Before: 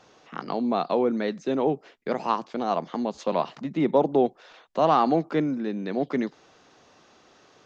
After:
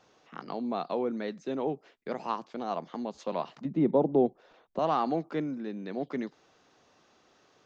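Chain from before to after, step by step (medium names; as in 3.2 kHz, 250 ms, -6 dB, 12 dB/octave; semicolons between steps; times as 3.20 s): 3.65–4.79 s: tilt shelf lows +7.5 dB, about 870 Hz; trim -7.5 dB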